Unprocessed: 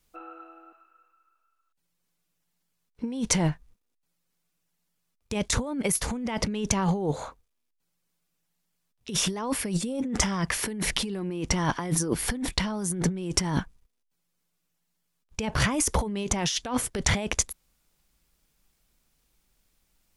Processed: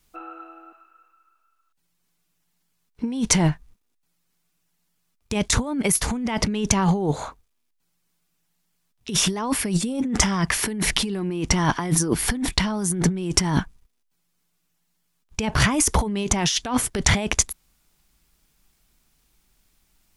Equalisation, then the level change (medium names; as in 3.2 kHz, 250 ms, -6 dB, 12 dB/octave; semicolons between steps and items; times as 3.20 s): peaking EQ 520 Hz -6.5 dB 0.29 oct; +5.5 dB